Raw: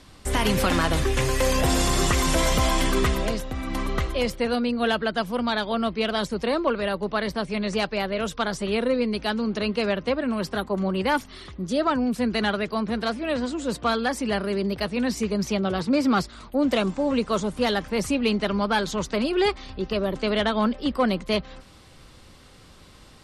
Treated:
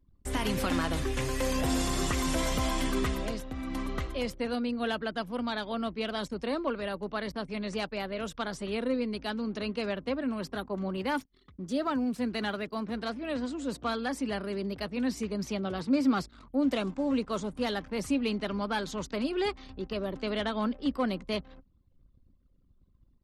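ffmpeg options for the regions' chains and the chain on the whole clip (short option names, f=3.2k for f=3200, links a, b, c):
-filter_complex "[0:a]asettb=1/sr,asplit=3[a][b][c];[a]atrim=end=10.974[d];[b]atrim=start=10.97:end=12.95,asetpts=PTS-STARTPTS,afade=t=in:d=0.004:c=qsin,afade=t=out:st=1.976:d=0.004:c=qsin,agate=range=-33dB:threshold=-38dB:ratio=3:release=100:detection=peak,lowshelf=f=64:g=-6.5,acrusher=bits=8:mix=0:aa=0.5[e];[c]atrim=start=12.946[f];[d][e]acrossfade=d=0.004:c1=hsin:c2=qsin[g];[g][f]acrossfade=d=0.004:c1=qsin:c2=hsin,anlmdn=0.158,equalizer=f=270:t=o:w=0.23:g=7,volume=-8.5dB"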